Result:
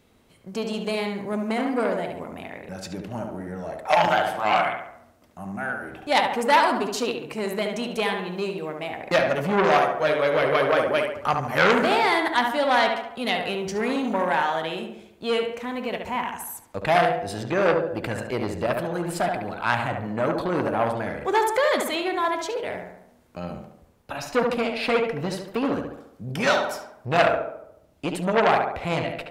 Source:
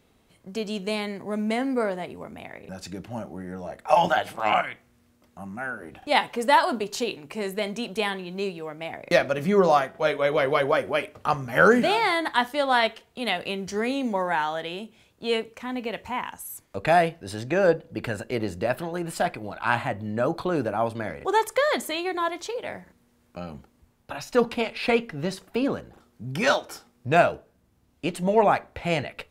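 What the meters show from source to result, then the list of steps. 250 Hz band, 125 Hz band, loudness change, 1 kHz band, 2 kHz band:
+1.0 dB, +1.0 dB, +1.0 dB, +2.0 dB, +1.5 dB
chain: tape echo 71 ms, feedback 57%, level -4 dB, low-pass 2300 Hz; core saturation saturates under 2200 Hz; gain +2 dB

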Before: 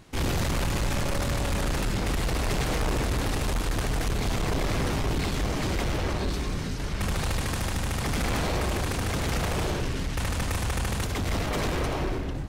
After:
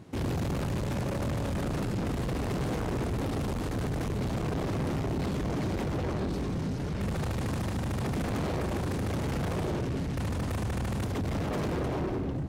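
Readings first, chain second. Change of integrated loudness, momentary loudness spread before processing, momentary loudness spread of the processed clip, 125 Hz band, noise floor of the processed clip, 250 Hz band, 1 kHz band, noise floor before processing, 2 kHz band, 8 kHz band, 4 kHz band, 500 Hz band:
-3.0 dB, 3 LU, 1 LU, -1.5 dB, -33 dBFS, 0.0 dB, -5.0 dB, -31 dBFS, -8.5 dB, -11.0 dB, -10.5 dB, -2.0 dB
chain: HPF 100 Hz 12 dB/oct; tilt shelf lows +7 dB, about 820 Hz; soft clip -27 dBFS, distortion -10 dB

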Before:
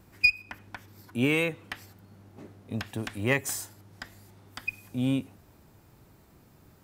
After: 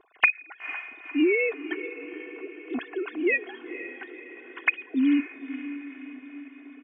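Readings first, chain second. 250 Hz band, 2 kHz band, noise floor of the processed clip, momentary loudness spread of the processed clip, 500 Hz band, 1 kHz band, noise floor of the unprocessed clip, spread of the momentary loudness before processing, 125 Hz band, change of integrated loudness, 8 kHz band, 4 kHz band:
+5.5 dB, +3.0 dB, -51 dBFS, 19 LU, +5.0 dB, +4.0 dB, -59 dBFS, 22 LU, under -30 dB, +1.5 dB, under -30 dB, -5.5 dB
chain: sine-wave speech; comb 2.8 ms, depth 80%; compressor 12:1, threshold -26 dBFS, peak gain reduction 19 dB; on a send: diffused feedback echo 0.494 s, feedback 56%, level -12 dB; on the sum: gain +8 dB

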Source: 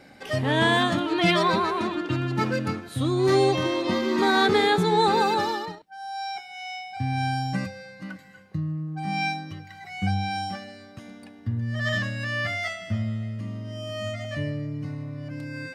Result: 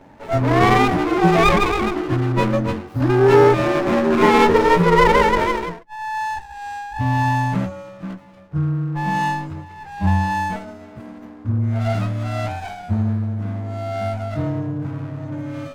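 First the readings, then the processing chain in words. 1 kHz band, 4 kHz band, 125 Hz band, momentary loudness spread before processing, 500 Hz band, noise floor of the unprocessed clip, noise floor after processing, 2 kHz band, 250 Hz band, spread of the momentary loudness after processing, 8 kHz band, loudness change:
+7.0 dB, -2.0 dB, +8.0 dB, 17 LU, +8.0 dB, -48 dBFS, -41 dBFS, +4.0 dB, +6.5 dB, 18 LU, +3.5 dB, +7.0 dB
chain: inharmonic rescaling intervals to 109%; resonant high shelf 1800 Hz -12.5 dB, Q 3; running maximum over 17 samples; gain +8.5 dB

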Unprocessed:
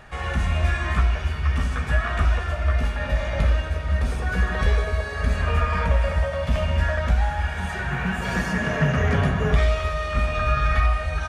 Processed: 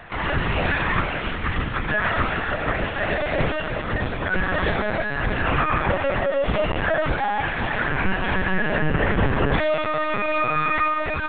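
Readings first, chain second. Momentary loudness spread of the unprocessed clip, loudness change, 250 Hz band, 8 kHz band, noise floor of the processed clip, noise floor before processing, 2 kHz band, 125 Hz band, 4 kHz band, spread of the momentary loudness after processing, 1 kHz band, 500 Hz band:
4 LU, +0.5 dB, +2.5 dB, under -35 dB, -28 dBFS, -30 dBFS, +4.5 dB, -5.0 dB, +3.0 dB, 4 LU, +5.0 dB, +5.0 dB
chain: HPF 100 Hz 24 dB/oct; LPC vocoder at 8 kHz pitch kept; maximiser +15 dB; gain -9 dB

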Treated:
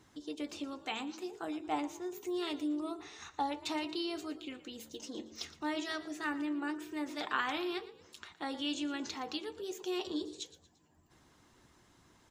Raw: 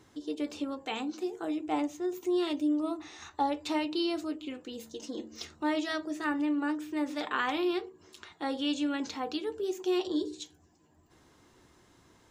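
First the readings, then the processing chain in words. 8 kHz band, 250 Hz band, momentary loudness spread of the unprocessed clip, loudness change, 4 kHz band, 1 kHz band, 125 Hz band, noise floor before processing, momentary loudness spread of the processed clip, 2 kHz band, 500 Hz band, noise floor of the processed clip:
-0.5 dB, -6.5 dB, 11 LU, -5.5 dB, -2.0 dB, -4.0 dB, n/a, -63 dBFS, 10 LU, -2.5 dB, -7.5 dB, -66 dBFS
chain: harmonic-percussive split harmonic -5 dB; bell 450 Hz -4.5 dB 0.92 oct; frequency-shifting echo 0.116 s, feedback 37%, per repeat +49 Hz, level -16.5 dB

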